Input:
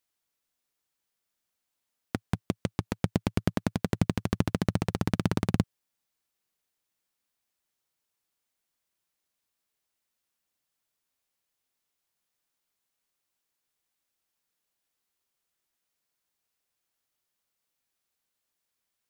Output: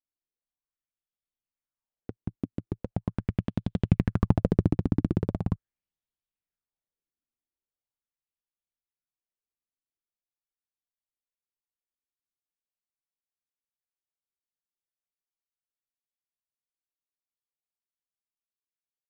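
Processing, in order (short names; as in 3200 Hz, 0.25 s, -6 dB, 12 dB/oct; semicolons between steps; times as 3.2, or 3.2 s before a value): Doppler pass-by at 4.25, 9 m/s, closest 5.3 m; tilt -3.5 dB/oct; LFO bell 0.41 Hz 270–3500 Hz +11 dB; gain -5 dB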